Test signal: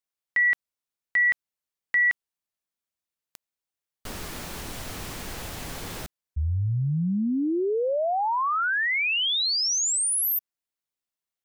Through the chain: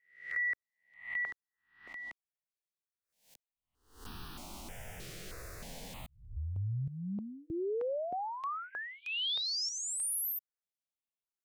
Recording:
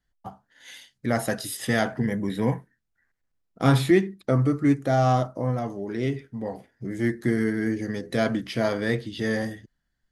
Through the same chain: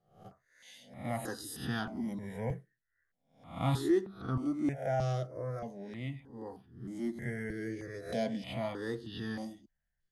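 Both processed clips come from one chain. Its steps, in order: spectral swells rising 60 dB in 0.48 s; high shelf 8300 Hz -5 dB; step phaser 3.2 Hz 250–2100 Hz; gain -9 dB

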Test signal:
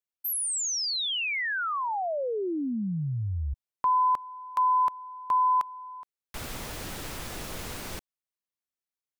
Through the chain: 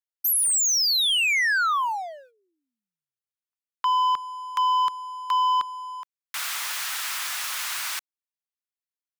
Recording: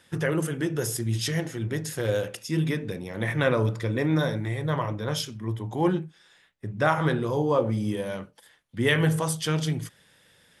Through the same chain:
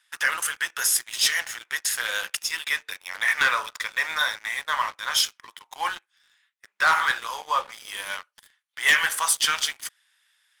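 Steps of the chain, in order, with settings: HPF 1100 Hz 24 dB/oct; sample leveller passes 3

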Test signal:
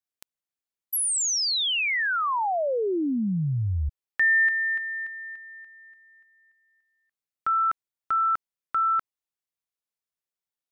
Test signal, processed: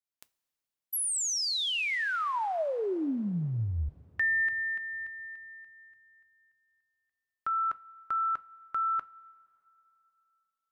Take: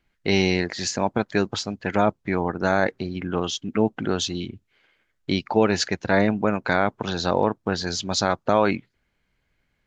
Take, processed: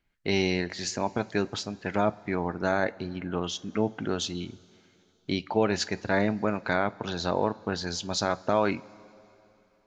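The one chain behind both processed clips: two-slope reverb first 0.23 s, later 3.1 s, from -18 dB, DRR 13.5 dB; gain -5.5 dB

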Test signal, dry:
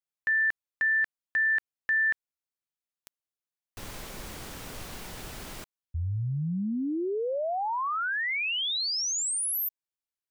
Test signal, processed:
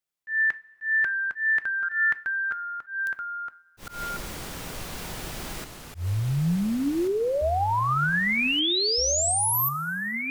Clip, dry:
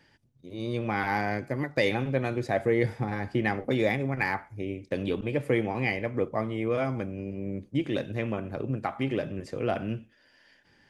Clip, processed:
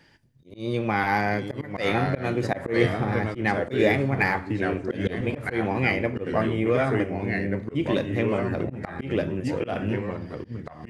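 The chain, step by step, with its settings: two-slope reverb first 0.26 s, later 1.9 s, from -18 dB, DRR 13 dB; echoes that change speed 0.744 s, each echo -2 st, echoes 2, each echo -6 dB; auto swell 0.144 s; gain +4.5 dB

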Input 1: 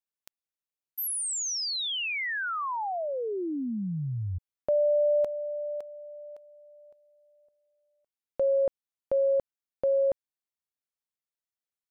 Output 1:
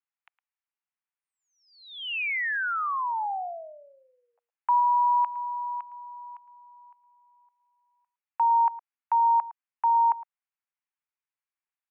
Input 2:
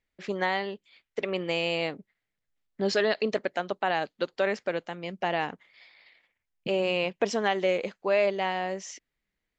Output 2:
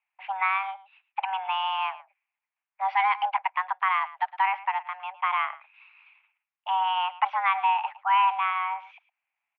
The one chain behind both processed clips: mistuned SSB +380 Hz 380–2400 Hz; outdoor echo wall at 19 m, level -17 dB; gain +3 dB

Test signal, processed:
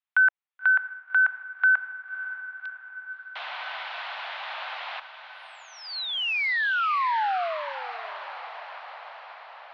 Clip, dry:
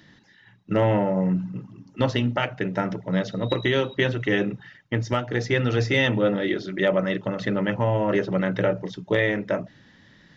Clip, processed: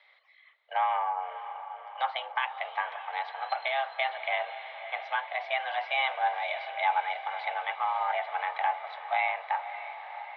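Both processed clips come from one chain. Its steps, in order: mistuned SSB +270 Hz 440–3500 Hz; treble ducked by the level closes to 2900 Hz, closed at -22 dBFS; diffused feedback echo 0.578 s, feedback 67%, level -11.5 dB; gain -4 dB

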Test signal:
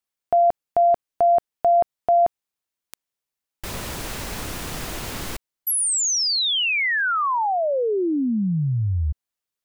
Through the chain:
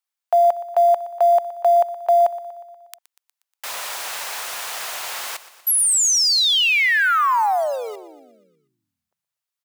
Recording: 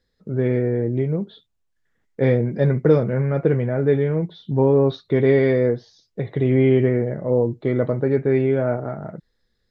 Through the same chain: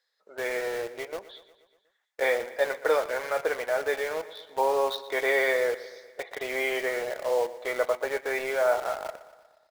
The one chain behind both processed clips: HPF 660 Hz 24 dB/oct; in parallel at -4 dB: requantised 6-bit, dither none; on the sum: feedback echo 0.12 s, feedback 60%, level -16.5 dB

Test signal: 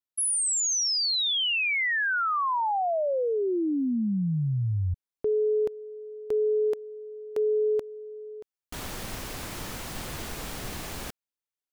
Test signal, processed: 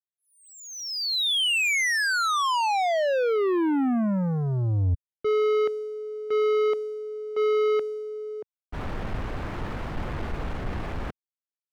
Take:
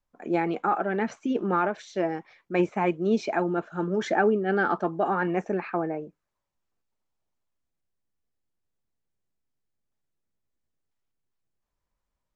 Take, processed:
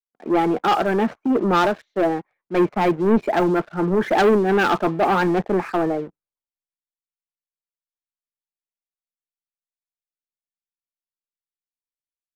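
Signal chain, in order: LPF 1700 Hz 12 dB/oct; sample leveller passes 3; three-band expander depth 70%

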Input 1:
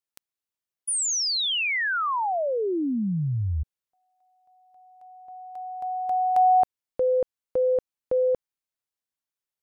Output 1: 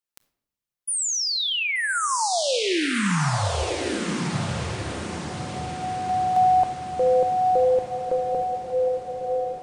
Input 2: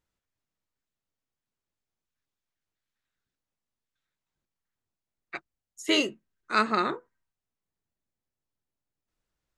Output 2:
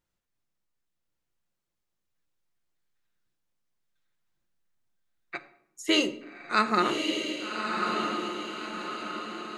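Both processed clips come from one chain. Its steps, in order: diffused feedback echo 1.19 s, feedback 52%, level -3 dB; shoebox room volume 2000 m³, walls furnished, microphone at 0.87 m

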